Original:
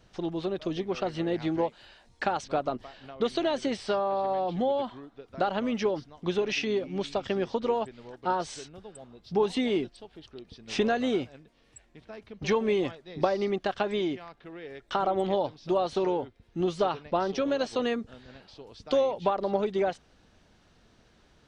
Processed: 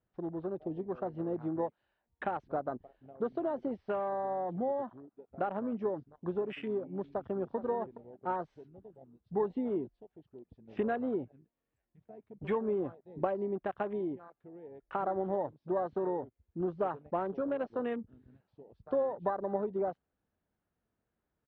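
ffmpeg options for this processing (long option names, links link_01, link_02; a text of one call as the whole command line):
ffmpeg -i in.wav -filter_complex "[0:a]asplit=2[link_01][link_02];[link_02]afade=type=in:start_time=7.08:duration=0.01,afade=type=out:start_time=7.55:duration=0.01,aecho=0:1:420|840:0.251189|0.0376783[link_03];[link_01][link_03]amix=inputs=2:normalize=0,lowpass=1800,afwtdn=0.0112,highpass=45,volume=-6dB" out.wav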